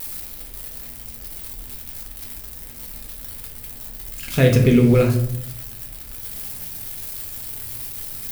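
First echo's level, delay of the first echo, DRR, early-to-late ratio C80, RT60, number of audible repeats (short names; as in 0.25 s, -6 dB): none, none, 0.0 dB, 10.5 dB, 0.70 s, none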